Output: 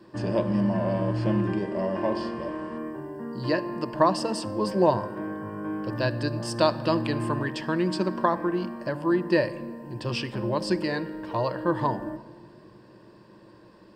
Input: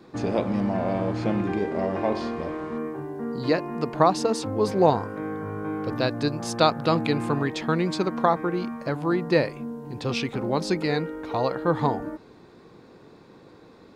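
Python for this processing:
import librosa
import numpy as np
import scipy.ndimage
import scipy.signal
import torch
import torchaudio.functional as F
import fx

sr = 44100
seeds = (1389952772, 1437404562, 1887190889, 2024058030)

y = fx.ripple_eq(x, sr, per_octave=1.3, db=11)
y = fx.room_shoebox(y, sr, seeds[0], volume_m3=2500.0, walls='mixed', distance_m=0.44)
y = F.gain(torch.from_numpy(y), -3.5).numpy()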